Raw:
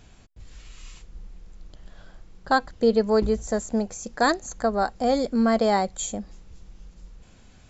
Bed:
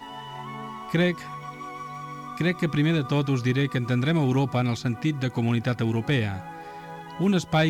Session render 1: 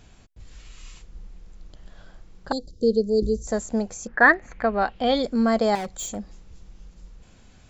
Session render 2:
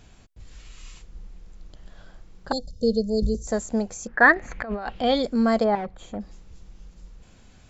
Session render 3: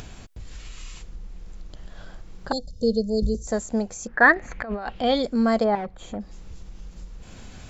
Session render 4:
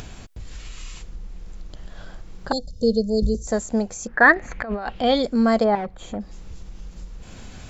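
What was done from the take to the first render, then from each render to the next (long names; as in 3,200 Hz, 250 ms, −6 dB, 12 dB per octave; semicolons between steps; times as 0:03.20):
0:02.52–0:03.47: Chebyshev band-stop filter 470–4,400 Hz, order 3; 0:04.06–0:05.22: low-pass with resonance 1,600 Hz → 3,600 Hz; 0:05.75–0:06.16: gain into a clipping stage and back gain 28 dB
0:02.53–0:03.35: comb filter 1.4 ms, depth 81%; 0:04.36–0:05.03: compressor whose output falls as the input rises −30 dBFS; 0:05.63–0:06.19: low-pass filter 1,600 Hz → 2,400 Hz
upward compression, threshold −30 dBFS
level +2.5 dB; brickwall limiter −3 dBFS, peak gain reduction 1.5 dB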